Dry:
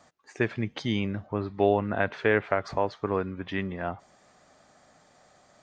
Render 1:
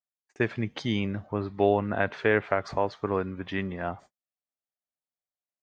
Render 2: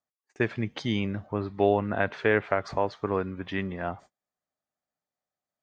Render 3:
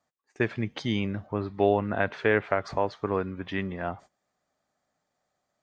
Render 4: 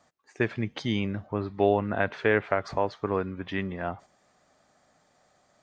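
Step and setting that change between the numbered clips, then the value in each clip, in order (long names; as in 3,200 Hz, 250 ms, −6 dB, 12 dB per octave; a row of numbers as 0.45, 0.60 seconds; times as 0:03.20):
noise gate, range: −47, −34, −20, −6 decibels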